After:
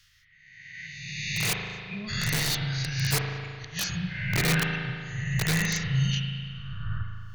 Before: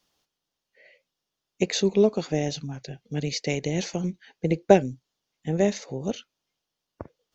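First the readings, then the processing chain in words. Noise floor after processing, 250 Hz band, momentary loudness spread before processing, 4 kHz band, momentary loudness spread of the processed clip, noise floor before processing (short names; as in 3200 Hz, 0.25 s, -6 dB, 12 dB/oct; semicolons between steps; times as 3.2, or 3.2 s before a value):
-58 dBFS, -5.5 dB, 15 LU, +5.5 dB, 12 LU, -85 dBFS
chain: spectral swells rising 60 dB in 1.43 s; reverb removal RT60 0.79 s; spectral gate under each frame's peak -30 dB strong; elliptic band-stop 130–1600 Hz, stop band 40 dB; high shelf 3800 Hz -9 dB; in parallel at +2 dB: compressor 6:1, threshold -46 dBFS, peak gain reduction 17.5 dB; on the sum: flipped gate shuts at -22 dBFS, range -30 dB; wrapped overs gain 27.5 dB; spring tank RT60 2.1 s, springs 37 ms, chirp 80 ms, DRR 1.5 dB; gain +7.5 dB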